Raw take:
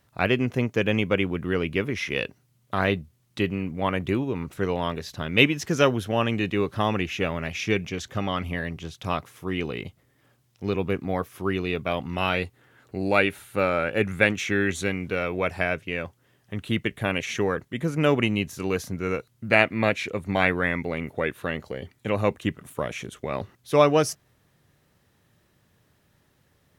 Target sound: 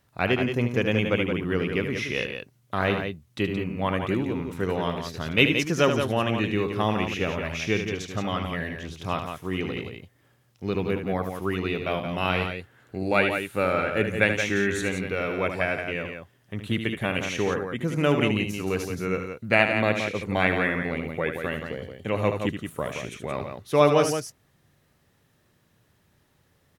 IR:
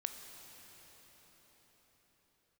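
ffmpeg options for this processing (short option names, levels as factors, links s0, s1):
-af "aecho=1:1:75|173:0.398|0.447,volume=0.841"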